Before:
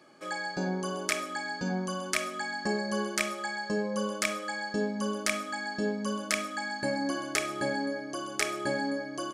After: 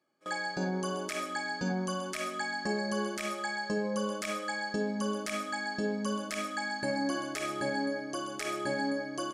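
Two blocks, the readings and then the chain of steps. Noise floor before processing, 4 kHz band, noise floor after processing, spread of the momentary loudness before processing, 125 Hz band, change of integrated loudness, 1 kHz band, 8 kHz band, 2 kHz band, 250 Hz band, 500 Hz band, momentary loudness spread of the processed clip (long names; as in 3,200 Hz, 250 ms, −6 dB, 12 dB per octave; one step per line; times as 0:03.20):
−40 dBFS, −2.5 dB, −40 dBFS, 4 LU, −1.0 dB, −2.0 dB, −0.5 dB, −5.5 dB, −2.5 dB, −1.0 dB, −1.5 dB, 3 LU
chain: noise gate with hold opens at −31 dBFS
brickwall limiter −22.5 dBFS, peak gain reduction 11 dB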